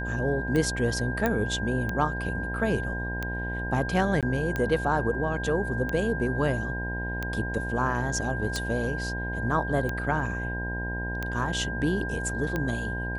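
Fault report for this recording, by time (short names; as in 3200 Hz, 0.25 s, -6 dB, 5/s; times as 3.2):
buzz 60 Hz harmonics 17 -33 dBFS
tick 45 rpm -16 dBFS
tone 1600 Hz -33 dBFS
1.26 pop -12 dBFS
4.21–4.23 gap 17 ms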